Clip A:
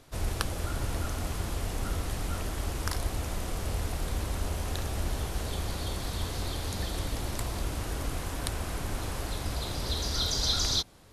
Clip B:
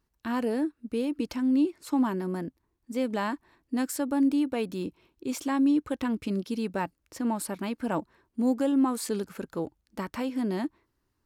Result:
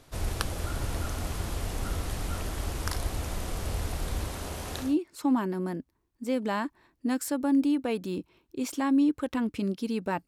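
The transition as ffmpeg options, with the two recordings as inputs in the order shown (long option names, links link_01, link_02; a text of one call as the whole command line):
ffmpeg -i cue0.wav -i cue1.wav -filter_complex "[0:a]asettb=1/sr,asplit=3[link_01][link_02][link_03];[link_01]atrim=end=4.284[link_04];[link_02]atrim=start=4.28:end=4.97,asetpts=PTS-STARTPTS,afade=type=in:duration=0.004:curve=qsin,afade=type=out:start_time=0.686:duration=0.004:curve=qsin,lowshelf=frequency=78:gain=-12[link_05];[link_03]atrim=start=4.966[link_06];[link_04][link_05]acrossfade=duration=0.004:curve1=hsin:curve2=qsin[link_07];[link_07][link_06]acrossfade=duration=0.004:curve1=qsin:curve2=hsin,apad=whole_dur=10.27,atrim=end=10.27,atrim=end=4.97,asetpts=PTS-STARTPTS[link_08];[1:a]atrim=start=1.47:end=6.95,asetpts=PTS-STARTPTS[link_09];[link_08][link_09]acrossfade=duration=0.18:curve1=tri:curve2=tri" out.wav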